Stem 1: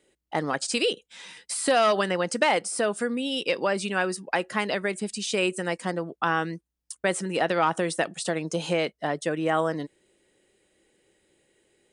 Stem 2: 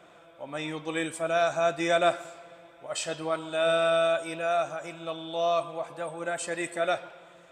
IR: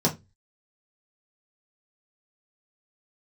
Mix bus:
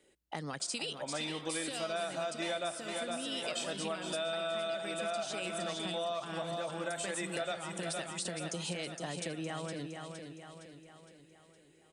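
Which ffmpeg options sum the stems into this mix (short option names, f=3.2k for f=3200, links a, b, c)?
-filter_complex "[0:a]acrossover=split=160|3000[a][b][c];[b]acompressor=threshold=-36dB:ratio=6[d];[a][d][c]amix=inputs=3:normalize=0,volume=-2dB,asplit=2[e][f];[f]volume=-7.5dB[g];[1:a]equalizer=f=3.5k:t=o:w=0.32:g=7,adelay=600,volume=0dB,asplit=2[h][i];[i]volume=-11dB[j];[g][j]amix=inputs=2:normalize=0,aecho=0:1:463|926|1389|1852|2315|2778|3241:1|0.5|0.25|0.125|0.0625|0.0312|0.0156[k];[e][h][k]amix=inputs=3:normalize=0,acompressor=threshold=-34dB:ratio=6"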